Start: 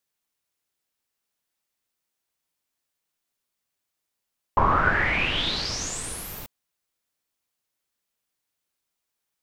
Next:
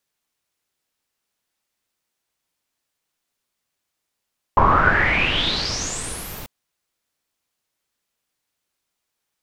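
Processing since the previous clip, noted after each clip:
high-shelf EQ 11,000 Hz −6 dB
level +5 dB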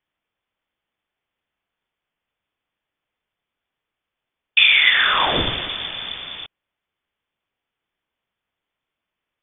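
voice inversion scrambler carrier 3,500 Hz
level +1 dB

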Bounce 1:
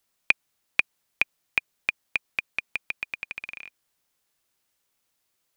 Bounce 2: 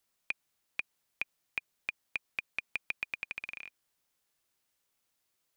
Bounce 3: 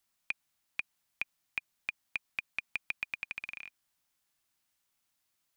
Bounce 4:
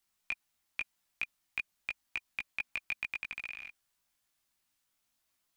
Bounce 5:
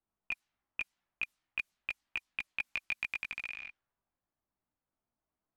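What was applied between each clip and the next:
brickwall limiter −14 dBFS, peak gain reduction 12 dB; level −4 dB
parametric band 460 Hz −9.5 dB 0.53 octaves
multi-voice chorus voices 6, 0.78 Hz, delay 18 ms, depth 2.7 ms; level +3 dB
low-pass that shuts in the quiet parts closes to 820 Hz, open at −36.5 dBFS; level +1 dB

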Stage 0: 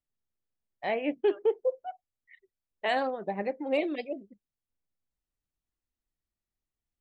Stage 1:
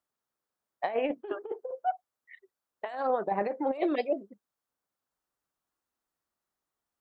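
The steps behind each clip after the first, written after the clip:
high-pass filter 720 Hz 6 dB per octave
compressor whose output falls as the input rises −36 dBFS, ratio −0.5
high shelf with overshoot 1,700 Hz −7.5 dB, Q 1.5
level +7.5 dB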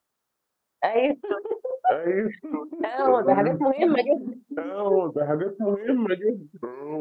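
delay with pitch and tempo change per echo 788 ms, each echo −5 semitones, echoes 2
level +8 dB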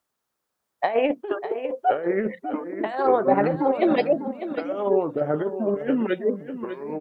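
repeating echo 598 ms, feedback 16%, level −11.5 dB

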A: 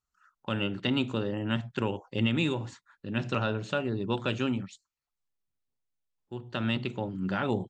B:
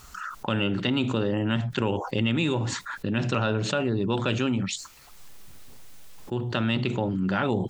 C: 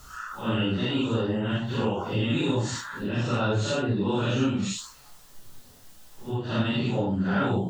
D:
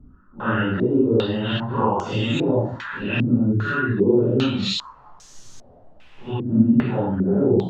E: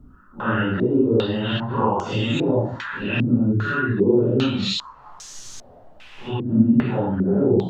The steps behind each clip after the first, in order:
envelope flattener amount 70%
random phases in long frames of 200 ms; parametric band 2,300 Hz −6.5 dB 0.38 octaves
gain on a spectral selection 0:03.52–0:03.98, 450–1,000 Hz −16 dB; low-pass on a step sequencer 2.5 Hz 260–6,400 Hz; level +3 dB
one half of a high-frequency compander encoder only

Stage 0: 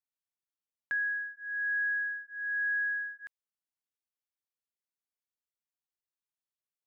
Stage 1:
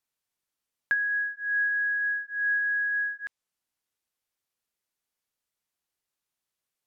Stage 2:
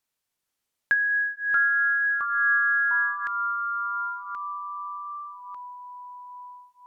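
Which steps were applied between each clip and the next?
treble cut that deepens with the level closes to 1,300 Hz, closed at −29 dBFS; level +9 dB
delay with pitch and tempo change per echo 460 ms, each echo −3 semitones, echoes 3, each echo −6 dB; level +3.5 dB

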